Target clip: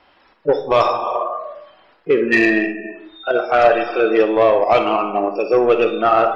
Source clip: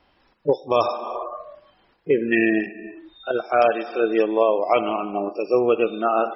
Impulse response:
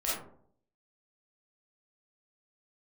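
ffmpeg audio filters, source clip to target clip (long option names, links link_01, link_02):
-filter_complex "[0:a]asplit=2[link_01][link_02];[link_02]highpass=frequency=720:poles=1,volume=11dB,asoftclip=type=tanh:threshold=-4dB[link_03];[link_01][link_03]amix=inputs=2:normalize=0,lowpass=frequency=2900:poles=1,volume=-6dB,acontrast=60,asplit=2[link_04][link_05];[1:a]atrim=start_sample=2205[link_06];[link_05][link_06]afir=irnorm=-1:irlink=0,volume=-12.5dB[link_07];[link_04][link_07]amix=inputs=2:normalize=0,volume=-4dB"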